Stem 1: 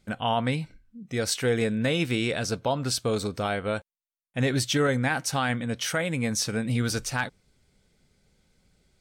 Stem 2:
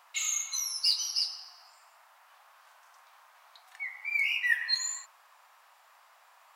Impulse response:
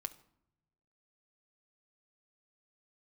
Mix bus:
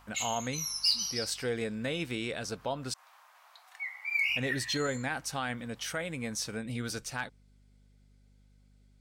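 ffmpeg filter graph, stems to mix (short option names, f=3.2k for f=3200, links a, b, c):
-filter_complex "[0:a]lowshelf=f=130:g=-8,aeval=exprs='val(0)+0.00224*(sin(2*PI*50*n/s)+sin(2*PI*2*50*n/s)/2+sin(2*PI*3*50*n/s)/3+sin(2*PI*4*50*n/s)/4+sin(2*PI*5*50*n/s)/5)':c=same,volume=-7.5dB,asplit=3[a][b][c];[a]atrim=end=2.94,asetpts=PTS-STARTPTS,afade=t=out:st=2.936:d=0.004:c=hsin[d];[b]atrim=start=2.94:end=4.28,asetpts=PTS-STARTPTS,volume=0[e];[c]atrim=start=4.28,asetpts=PTS-STARTPTS,afade=t=in:d=0.004:c=hsin[f];[d][e][f]concat=n=3:v=0:a=1,asplit=2[g][h];[1:a]volume=-0.5dB[i];[h]apad=whole_len=289131[j];[i][j]sidechaincompress=threshold=-41dB:ratio=8:attack=34:release=128[k];[g][k]amix=inputs=2:normalize=0"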